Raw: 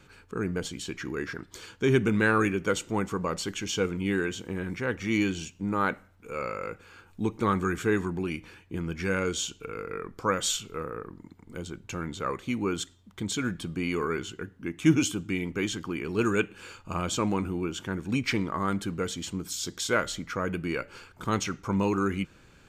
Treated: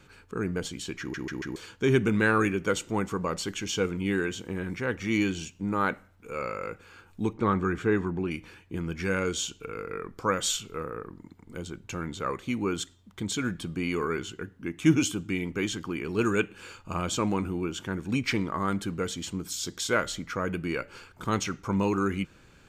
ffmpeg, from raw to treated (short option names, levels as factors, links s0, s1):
-filter_complex "[0:a]asettb=1/sr,asplit=3[s0][s1][s2];[s0]atrim=end=7.334[s3];[s1]atrim=start=7.33:end=8.31,asetpts=PTS-STARTPTS,afade=t=in:d=0.004:c=qsin,afade=t=out:st=0.976:d=0.004:c=qsin,aemphasis=mode=reproduction:type=75fm[s4];[s2]atrim=start=8.306[s5];[s3][s4]acrossfade=d=0.004:c1=hsin:c2=qsin[s6];[s6][s5]acrossfade=d=0.004:c1=qsin:c2=hsin,asplit=5[s7][s8][s9][s10][s11];[s7]atrim=end=1.142[s12];[s8]atrim=start=0.998:end=1.142[s13];[s9]atrim=start=0.998:end=1.142[s14];[s10]atrim=start=0.998:end=1.142[s15];[s11]atrim=start=1.558[s16];[s12][s13]acrossfade=d=0.004:c1=hsin:c2=hsin[s17];[s17][s14]acrossfade=d=0.004:c1=hsin:c2=hsin[s18];[s18][s15]acrossfade=d=0.004:c1=hsin:c2=hsin[s19];[s19][s16]acrossfade=d=0.004:c1=hsin:c2=hsin"